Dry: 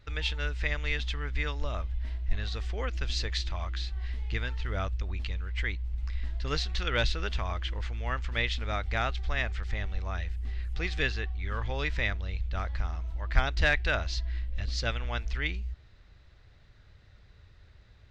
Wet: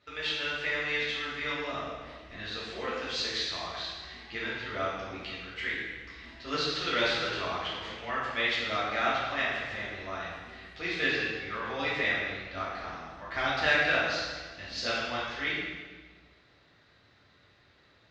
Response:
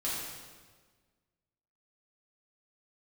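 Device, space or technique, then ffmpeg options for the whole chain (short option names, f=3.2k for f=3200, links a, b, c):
supermarket ceiling speaker: -filter_complex "[0:a]highpass=230,lowpass=6.4k[a];[1:a]atrim=start_sample=2205[b];[a][b]afir=irnorm=-1:irlink=0,volume=-1.5dB"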